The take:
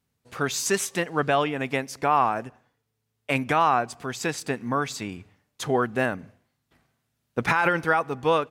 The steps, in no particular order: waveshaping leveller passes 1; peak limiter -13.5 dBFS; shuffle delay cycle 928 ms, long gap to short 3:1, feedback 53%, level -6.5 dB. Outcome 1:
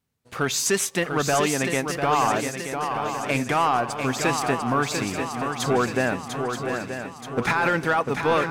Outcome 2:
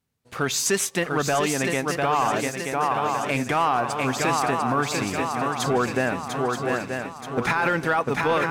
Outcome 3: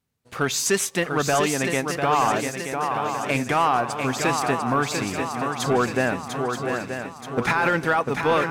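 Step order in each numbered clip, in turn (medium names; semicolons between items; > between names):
waveshaping leveller > peak limiter > shuffle delay; shuffle delay > waveshaping leveller > peak limiter; peak limiter > shuffle delay > waveshaping leveller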